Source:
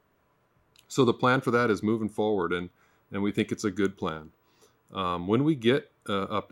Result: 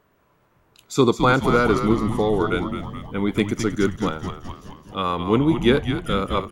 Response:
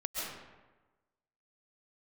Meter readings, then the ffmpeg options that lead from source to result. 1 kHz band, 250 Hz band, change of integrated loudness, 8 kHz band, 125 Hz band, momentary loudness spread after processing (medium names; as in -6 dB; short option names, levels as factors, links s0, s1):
+6.5 dB, +6.5 dB, +6.0 dB, +6.5 dB, +8.0 dB, 14 LU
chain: -filter_complex "[0:a]asplit=9[s0][s1][s2][s3][s4][s5][s6][s7][s8];[s1]adelay=213,afreqshift=-100,volume=0.422[s9];[s2]adelay=426,afreqshift=-200,volume=0.248[s10];[s3]adelay=639,afreqshift=-300,volume=0.146[s11];[s4]adelay=852,afreqshift=-400,volume=0.0871[s12];[s5]adelay=1065,afreqshift=-500,volume=0.0513[s13];[s6]adelay=1278,afreqshift=-600,volume=0.0302[s14];[s7]adelay=1491,afreqshift=-700,volume=0.0178[s15];[s8]adelay=1704,afreqshift=-800,volume=0.0105[s16];[s0][s9][s10][s11][s12][s13][s14][s15][s16]amix=inputs=9:normalize=0,volume=1.88"